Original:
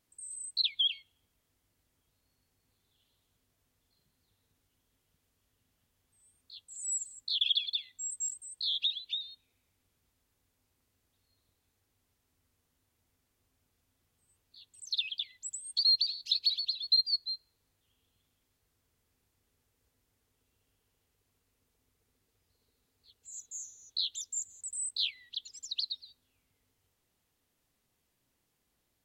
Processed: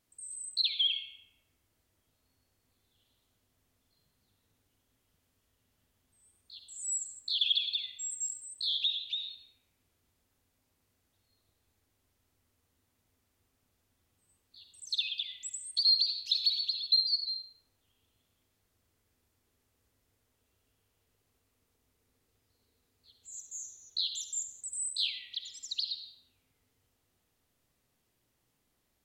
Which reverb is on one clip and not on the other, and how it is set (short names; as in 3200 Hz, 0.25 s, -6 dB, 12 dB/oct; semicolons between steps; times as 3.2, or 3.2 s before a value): digital reverb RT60 2.3 s, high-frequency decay 0.25×, pre-delay 25 ms, DRR 4 dB